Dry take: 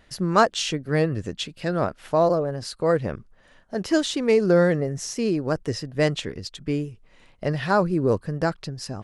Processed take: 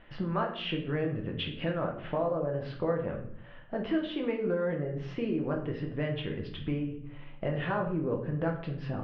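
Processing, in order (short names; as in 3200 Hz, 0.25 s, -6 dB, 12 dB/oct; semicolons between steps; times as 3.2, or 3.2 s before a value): elliptic low-pass 3100 Hz, stop band 80 dB; compressor 5:1, threshold -32 dBFS, peak gain reduction 17.5 dB; shoebox room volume 110 m³, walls mixed, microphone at 0.74 m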